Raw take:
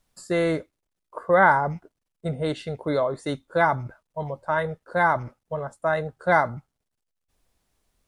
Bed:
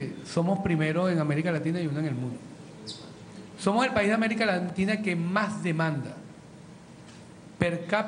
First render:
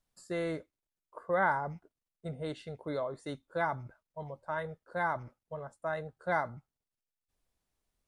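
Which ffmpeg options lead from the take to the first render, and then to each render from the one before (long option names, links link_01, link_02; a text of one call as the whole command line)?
ffmpeg -i in.wav -af "volume=-11.5dB" out.wav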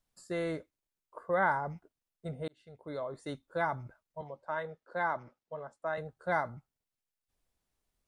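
ffmpeg -i in.wav -filter_complex "[0:a]asettb=1/sr,asplit=3[link_01][link_02][link_03];[link_01]atrim=end=4.214[link_04];[link_02]atrim=start=4.21:end=5.98,asetpts=PTS-STARTPTS,afade=type=in:duration=0.004:curve=qsin,afade=type=out:start_time=1.766:duration=0.004:curve=qsin,acrossover=split=180 7100:gain=0.251 1 0.158[link_05][link_06][link_07];[link_05][link_06][link_07]amix=inputs=3:normalize=0[link_08];[link_03]atrim=start=5.976[link_09];[link_04][link_08]acrossfade=duration=0.004:curve1=hsin:curve2=qsin[link_10];[link_10][link_09]acrossfade=duration=0.004:curve1=qsin:curve2=hsin,asplit=2[link_11][link_12];[link_11]atrim=end=2.48,asetpts=PTS-STARTPTS,afade=type=out:start_time=2.476:duration=0.004:curve=hsin[link_13];[link_12]atrim=start=2.48,asetpts=PTS-STARTPTS,afade=type=in:duration=0.75[link_14];[link_13][link_14]concat=n=2:v=0:a=1" out.wav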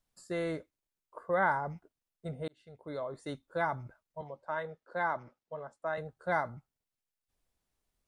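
ffmpeg -i in.wav -af anull out.wav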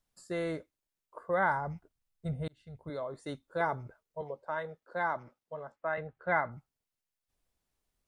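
ffmpeg -i in.wav -filter_complex "[0:a]asettb=1/sr,asplit=3[link_01][link_02][link_03];[link_01]atrim=end=1.244[link_04];[link_02]atrim=start=1.24:end=2.9,asetpts=PTS-STARTPTS,afade=type=in:duration=0.004:curve=qsin,afade=type=out:start_time=1.656:duration=0.004:curve=qsin,asubboost=boost=11:cutoff=150[link_05];[link_03]atrim=start=2.896[link_06];[link_04][link_05]acrossfade=duration=0.004:curve1=hsin:curve2=qsin[link_07];[link_07][link_06]acrossfade=duration=0.004:curve1=qsin:curve2=hsin,asettb=1/sr,asplit=3[link_08][link_09][link_10];[link_08]atrim=end=3.604[link_11];[link_09]atrim=start=3.6:end=4.5,asetpts=PTS-STARTPTS,afade=type=in:duration=0.004:curve=qsin,afade=type=out:start_time=0.896:duration=0.004:curve=qsin,equalizer=frequency=440:width=3.1:gain=10[link_12];[link_10]atrim=start=4.496[link_13];[link_11][link_12]acrossfade=duration=0.004:curve1=hsin:curve2=qsin[link_14];[link_14][link_13]acrossfade=duration=0.004:curve1=qsin:curve2=hsin,asettb=1/sr,asplit=3[link_15][link_16][link_17];[link_15]atrim=end=5.724[link_18];[link_16]atrim=start=5.72:end=6.52,asetpts=PTS-STARTPTS,afade=type=in:duration=0.004:curve=qsin,afade=type=out:start_time=0.796:duration=0.004:curve=qsin,lowpass=frequency=2300:width_type=q:width=1.7[link_19];[link_17]atrim=start=6.516[link_20];[link_18][link_19]acrossfade=duration=0.004:curve1=hsin:curve2=qsin[link_21];[link_21][link_20]acrossfade=duration=0.004:curve1=qsin:curve2=hsin" out.wav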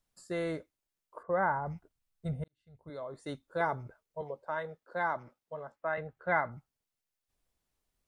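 ffmpeg -i in.wav -filter_complex "[0:a]asplit=3[link_01][link_02][link_03];[link_01]afade=type=out:start_time=1.22:duration=0.02[link_04];[link_02]lowpass=1500,afade=type=in:start_time=1.22:duration=0.02,afade=type=out:start_time=1.65:duration=0.02[link_05];[link_03]afade=type=in:start_time=1.65:duration=0.02[link_06];[link_04][link_05][link_06]amix=inputs=3:normalize=0,asplit=2[link_07][link_08];[link_07]atrim=end=2.44,asetpts=PTS-STARTPTS,afade=type=out:start_time=2.436:duration=0.004:curve=hsin[link_09];[link_08]atrim=start=2.44,asetpts=PTS-STARTPTS,afade=type=in:duration=0.87[link_10];[link_09][link_10]concat=n=2:v=0:a=1" out.wav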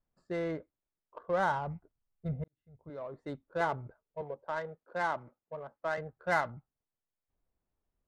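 ffmpeg -i in.wav -af "adynamicsmooth=sensitivity=7:basefreq=1500" out.wav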